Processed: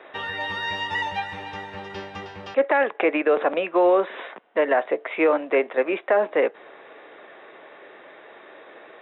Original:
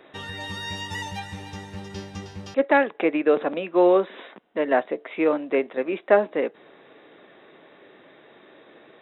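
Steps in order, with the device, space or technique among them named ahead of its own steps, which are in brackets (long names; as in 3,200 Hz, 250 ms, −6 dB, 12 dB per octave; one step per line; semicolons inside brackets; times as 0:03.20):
DJ mixer with the lows and highs turned down (three-way crossover with the lows and the highs turned down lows −15 dB, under 420 Hz, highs −23 dB, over 3,300 Hz; brickwall limiter −18.5 dBFS, peak gain reduction 11.5 dB)
level +8 dB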